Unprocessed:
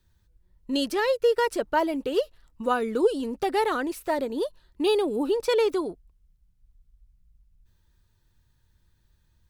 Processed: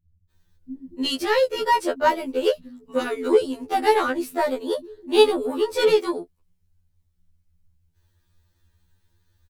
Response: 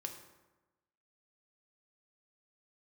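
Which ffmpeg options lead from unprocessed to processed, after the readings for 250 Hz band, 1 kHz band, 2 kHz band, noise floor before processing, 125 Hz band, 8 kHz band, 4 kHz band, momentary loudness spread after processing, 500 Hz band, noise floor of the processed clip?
+1.0 dB, +5.0 dB, +4.0 dB, -67 dBFS, n/a, +4.0 dB, +6.0 dB, 11 LU, +3.5 dB, -69 dBFS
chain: -filter_complex "[0:a]acrossover=split=210[a][b];[b]adelay=300[c];[a][c]amix=inputs=2:normalize=0,aeval=exprs='0.266*(cos(1*acos(clip(val(0)/0.266,-1,1)))-cos(1*PI/2))+0.0106*(cos(7*acos(clip(val(0)/0.266,-1,1)))-cos(7*PI/2))':c=same,afftfilt=real='re*2*eq(mod(b,4),0)':imag='im*2*eq(mod(b,4),0)':win_size=2048:overlap=0.75,volume=7dB"

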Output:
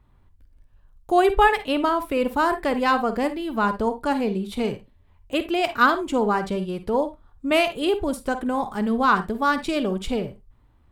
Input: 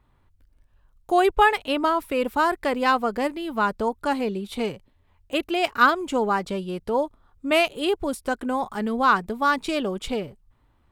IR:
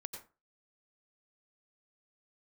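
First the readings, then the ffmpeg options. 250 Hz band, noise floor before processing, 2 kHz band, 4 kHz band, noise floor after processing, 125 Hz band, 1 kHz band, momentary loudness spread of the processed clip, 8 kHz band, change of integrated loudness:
+2.5 dB, -63 dBFS, -0.5 dB, -0.5 dB, -57 dBFS, +4.0 dB, +0.5 dB, 9 LU, -0.5 dB, +1.0 dB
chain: -filter_complex "[0:a]lowshelf=f=270:g=6.5,asplit=2[a][b];[1:a]atrim=start_sample=2205,asetrate=83790,aresample=44100[c];[b][c]afir=irnorm=-1:irlink=0,volume=7dB[d];[a][d]amix=inputs=2:normalize=0,volume=-5.5dB"

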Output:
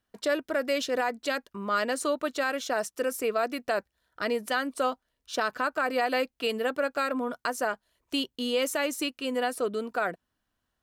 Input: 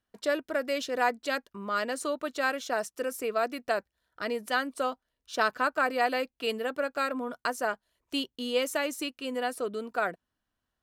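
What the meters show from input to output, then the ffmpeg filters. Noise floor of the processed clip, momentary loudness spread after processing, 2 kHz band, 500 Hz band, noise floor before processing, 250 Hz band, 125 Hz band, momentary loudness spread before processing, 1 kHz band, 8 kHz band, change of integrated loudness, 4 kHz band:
-82 dBFS, 5 LU, +0.5 dB, +2.0 dB, under -85 dBFS, +3.0 dB, n/a, 7 LU, 0.0 dB, +3.5 dB, +1.5 dB, +2.0 dB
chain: -af "alimiter=limit=-20.5dB:level=0:latency=1:release=78,volume=3.5dB"

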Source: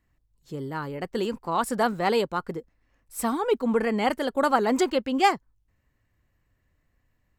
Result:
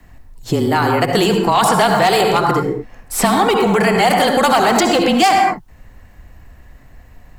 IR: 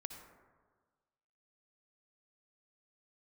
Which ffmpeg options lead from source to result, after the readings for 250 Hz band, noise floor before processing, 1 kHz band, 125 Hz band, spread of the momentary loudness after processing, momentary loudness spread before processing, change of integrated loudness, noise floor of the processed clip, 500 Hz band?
+10.5 dB, -72 dBFS, +13.0 dB, +17.0 dB, 7 LU, 13 LU, +11.5 dB, -44 dBFS, +10.5 dB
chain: -filter_complex "[0:a]afreqshift=-26,lowshelf=f=150:g=6[a];[1:a]atrim=start_sample=2205,afade=t=out:st=0.28:d=0.01,atrim=end_sample=12789[b];[a][b]afir=irnorm=-1:irlink=0,apsyclip=28.5dB,acrossover=split=130|1400|3900[c][d][e][f];[c]acompressor=threshold=-27dB:ratio=6[g];[g][d][e][f]amix=inputs=4:normalize=0,equalizer=f=740:t=o:w=0.43:g=8,acrossover=split=1800|6100[h][i][j];[h]acompressor=threshold=-13dB:ratio=4[k];[i]acompressor=threshold=-19dB:ratio=4[l];[j]acompressor=threshold=-25dB:ratio=4[m];[k][l][m]amix=inputs=3:normalize=0,volume=-1dB"

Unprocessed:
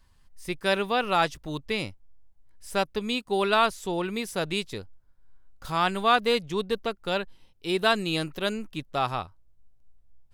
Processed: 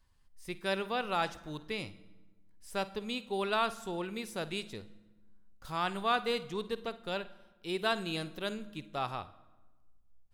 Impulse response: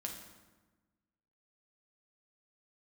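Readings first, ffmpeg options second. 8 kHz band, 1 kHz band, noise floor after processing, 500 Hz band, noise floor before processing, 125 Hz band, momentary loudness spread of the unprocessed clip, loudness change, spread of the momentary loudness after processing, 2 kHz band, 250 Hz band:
-8.5 dB, -8.5 dB, -65 dBFS, -8.5 dB, -60 dBFS, -8.0 dB, 14 LU, -8.5 dB, 14 LU, -8.5 dB, -8.0 dB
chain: -filter_complex "[0:a]asplit=2[a][b];[1:a]atrim=start_sample=2205,adelay=52[c];[b][c]afir=irnorm=-1:irlink=0,volume=-13dB[d];[a][d]amix=inputs=2:normalize=0,volume=-8.5dB"

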